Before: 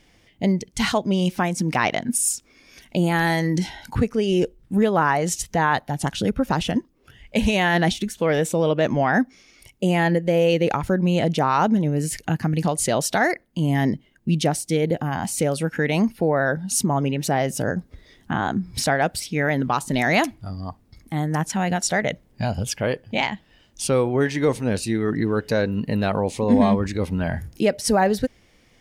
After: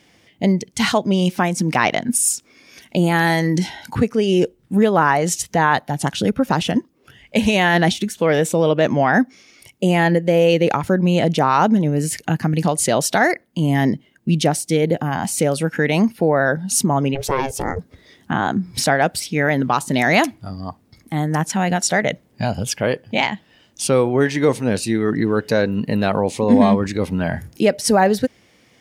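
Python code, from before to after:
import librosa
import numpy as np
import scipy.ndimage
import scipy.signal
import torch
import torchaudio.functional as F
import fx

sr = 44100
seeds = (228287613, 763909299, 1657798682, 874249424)

y = scipy.signal.sosfilt(scipy.signal.butter(2, 110.0, 'highpass', fs=sr, output='sos'), x)
y = fx.ring_mod(y, sr, carrier_hz=270.0, at=(17.14, 17.78), fade=0.02)
y = F.gain(torch.from_numpy(y), 4.0).numpy()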